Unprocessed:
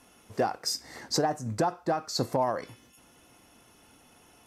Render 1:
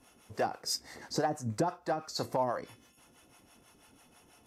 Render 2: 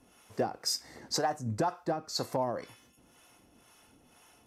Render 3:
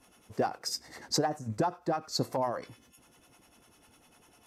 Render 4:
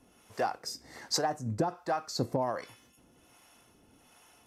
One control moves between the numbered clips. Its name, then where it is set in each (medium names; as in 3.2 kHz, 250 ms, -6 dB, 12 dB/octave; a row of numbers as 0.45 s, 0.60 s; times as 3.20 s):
harmonic tremolo, rate: 6.1 Hz, 2 Hz, 10 Hz, 1.3 Hz